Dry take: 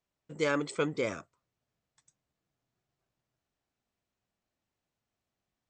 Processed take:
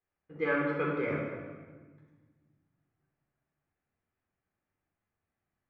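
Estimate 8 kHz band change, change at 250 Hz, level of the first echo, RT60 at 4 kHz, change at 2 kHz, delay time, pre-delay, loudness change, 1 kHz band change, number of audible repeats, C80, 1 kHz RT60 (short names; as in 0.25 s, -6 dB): under -30 dB, +1.5 dB, none, 1.1 s, +2.5 dB, none, 12 ms, -0.5 dB, +1.5 dB, none, 3.0 dB, 1.3 s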